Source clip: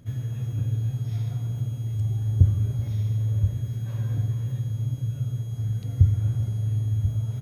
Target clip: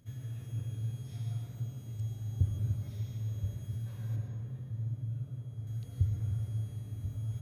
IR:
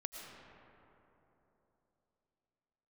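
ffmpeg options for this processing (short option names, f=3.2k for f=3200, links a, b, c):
-filter_complex "[0:a]asetnsamples=n=441:p=0,asendcmd='4.16 highshelf g -7;5.67 highshelf g 4.5',highshelf=f=2.6k:g=6.5[a];[1:a]atrim=start_sample=2205,afade=t=out:st=0.37:d=0.01,atrim=end_sample=16758,asetrate=43659,aresample=44100[b];[a][b]afir=irnorm=-1:irlink=0,volume=-8dB"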